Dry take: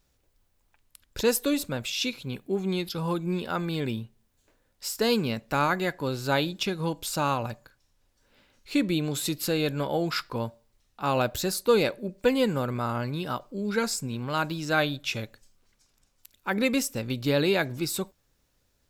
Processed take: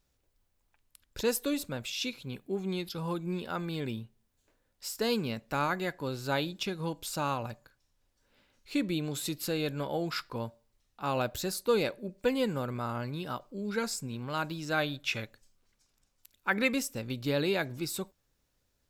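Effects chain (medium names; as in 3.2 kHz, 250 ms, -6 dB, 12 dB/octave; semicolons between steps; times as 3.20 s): 14.87–16.73 s: dynamic bell 1.7 kHz, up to +8 dB, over -43 dBFS, Q 0.82; trim -5.5 dB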